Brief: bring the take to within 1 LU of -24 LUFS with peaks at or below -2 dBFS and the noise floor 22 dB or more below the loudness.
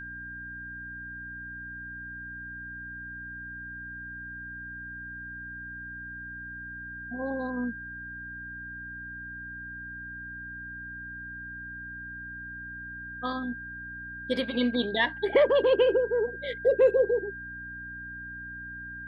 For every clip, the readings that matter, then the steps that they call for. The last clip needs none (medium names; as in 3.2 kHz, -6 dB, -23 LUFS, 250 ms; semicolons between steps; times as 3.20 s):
hum 60 Hz; highest harmonic 300 Hz; hum level -46 dBFS; steady tone 1.6 kHz; tone level -38 dBFS; loudness -32.0 LUFS; peak level -12.0 dBFS; loudness target -24.0 LUFS
-> de-hum 60 Hz, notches 5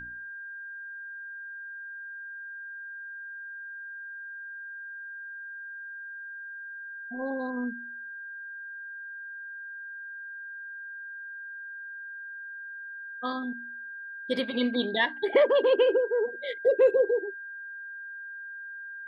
hum not found; steady tone 1.6 kHz; tone level -38 dBFS
-> band-stop 1.6 kHz, Q 30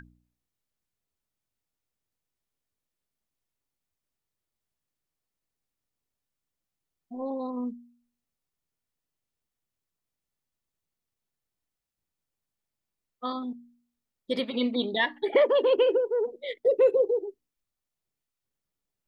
steady tone not found; loudness -26.5 LUFS; peak level -12.0 dBFS; loudness target -24.0 LUFS
-> trim +2.5 dB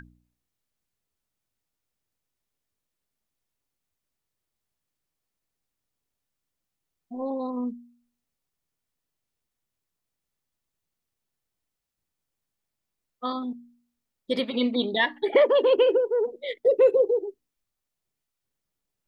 loudness -24.0 LUFS; peak level -9.5 dBFS; noise floor -85 dBFS